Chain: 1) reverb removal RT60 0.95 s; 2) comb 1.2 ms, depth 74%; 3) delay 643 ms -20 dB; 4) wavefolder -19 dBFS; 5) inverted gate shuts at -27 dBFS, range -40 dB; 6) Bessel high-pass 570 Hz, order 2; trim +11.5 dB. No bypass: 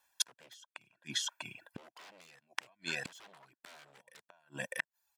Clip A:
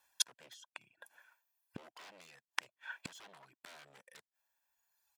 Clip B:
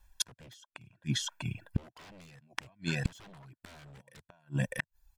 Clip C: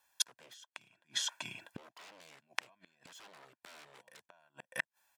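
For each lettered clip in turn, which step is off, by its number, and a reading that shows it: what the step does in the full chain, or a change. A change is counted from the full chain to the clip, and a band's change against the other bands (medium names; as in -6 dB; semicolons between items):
3, momentary loudness spread change +2 LU; 6, 125 Hz band +20.0 dB; 1, 250 Hz band -5.0 dB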